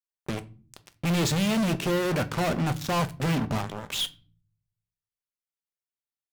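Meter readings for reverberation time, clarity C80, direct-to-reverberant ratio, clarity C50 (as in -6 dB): no single decay rate, 24.5 dB, 10.5 dB, 20.0 dB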